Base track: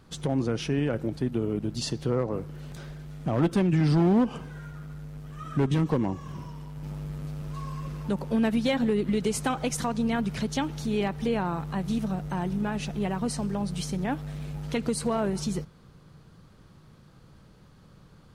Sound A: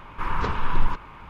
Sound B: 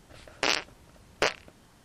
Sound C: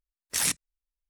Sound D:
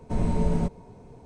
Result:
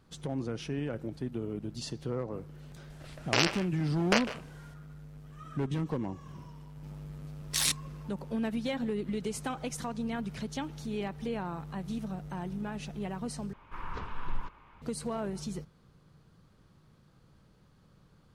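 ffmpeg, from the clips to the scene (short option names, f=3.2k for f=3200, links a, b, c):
-filter_complex "[0:a]volume=-8dB[a];[2:a]asplit=2[b][c];[c]adelay=150,highpass=300,lowpass=3.4k,asoftclip=type=hard:threshold=-17dB,volume=-11dB[d];[b][d]amix=inputs=2:normalize=0[e];[3:a]equalizer=f=3.9k:t=o:w=0.77:g=9.5[f];[a]asplit=2[g][h];[g]atrim=end=13.534[i];[1:a]atrim=end=1.29,asetpts=PTS-STARTPTS,volume=-13.5dB[j];[h]atrim=start=14.816[k];[e]atrim=end=1.84,asetpts=PTS-STARTPTS,volume=-1dB,afade=t=in:d=0.004:c=hsin,afade=t=out:st=1.836:d=0.004:c=hsin,adelay=2900[l];[f]atrim=end=1.09,asetpts=PTS-STARTPTS,volume=-5dB,afade=t=in:d=0.004:c=hsin,afade=t=out:st=1.086:d=0.004:c=hsin,adelay=7200[m];[i][j]acrossfade=d=0.004:c1=hsin:c2=hsin[n];[n][k]acrossfade=d=0.004:c1=hsin:c2=hsin[o];[o][l][m]amix=inputs=3:normalize=0"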